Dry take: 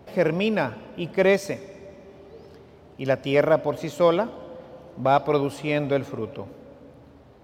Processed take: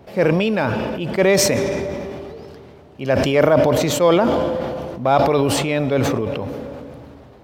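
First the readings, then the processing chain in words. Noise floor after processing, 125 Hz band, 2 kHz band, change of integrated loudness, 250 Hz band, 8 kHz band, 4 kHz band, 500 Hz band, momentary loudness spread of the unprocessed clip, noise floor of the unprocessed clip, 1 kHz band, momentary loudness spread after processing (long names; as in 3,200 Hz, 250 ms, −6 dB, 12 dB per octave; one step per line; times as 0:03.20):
−44 dBFS, +8.5 dB, +5.5 dB, +6.0 dB, +7.5 dB, can't be measured, +10.0 dB, +5.5 dB, 20 LU, −50 dBFS, +5.5 dB, 17 LU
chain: level that may fall only so fast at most 21 dB per second
level +3 dB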